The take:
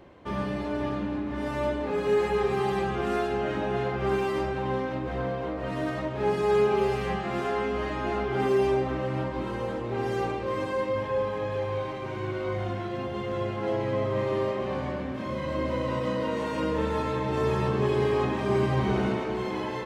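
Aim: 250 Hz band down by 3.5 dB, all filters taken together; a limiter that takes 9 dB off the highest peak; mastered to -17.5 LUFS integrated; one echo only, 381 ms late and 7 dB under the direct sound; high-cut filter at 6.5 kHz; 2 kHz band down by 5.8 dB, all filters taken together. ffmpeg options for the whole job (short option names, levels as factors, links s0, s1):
-af "lowpass=6500,equalizer=f=250:t=o:g=-5,equalizer=f=2000:t=o:g=-7.5,alimiter=level_in=1.06:limit=0.0631:level=0:latency=1,volume=0.944,aecho=1:1:381:0.447,volume=5.62"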